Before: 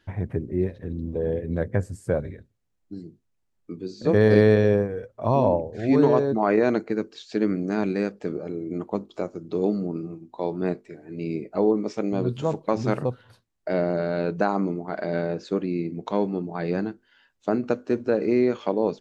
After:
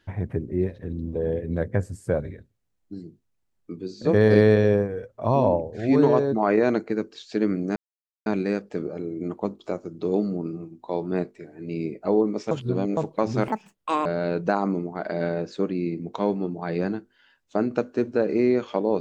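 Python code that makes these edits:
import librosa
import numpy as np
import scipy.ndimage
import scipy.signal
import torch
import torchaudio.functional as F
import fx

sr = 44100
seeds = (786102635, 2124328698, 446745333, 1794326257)

y = fx.edit(x, sr, fx.insert_silence(at_s=7.76, length_s=0.5),
    fx.reverse_span(start_s=12.01, length_s=0.46),
    fx.speed_span(start_s=12.98, length_s=1.0, speed=1.74), tone=tone)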